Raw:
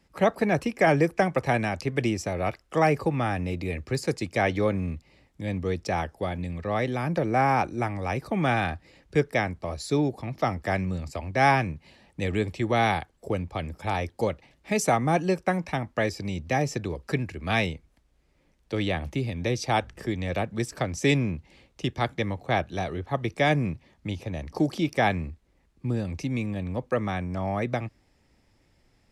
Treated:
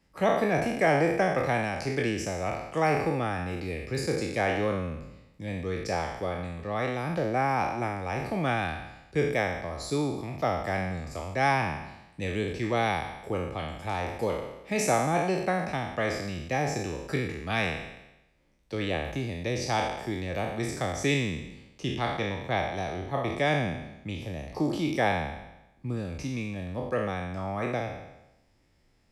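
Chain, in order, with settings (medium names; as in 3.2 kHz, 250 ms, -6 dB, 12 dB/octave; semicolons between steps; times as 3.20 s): spectral sustain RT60 0.94 s; trim -5 dB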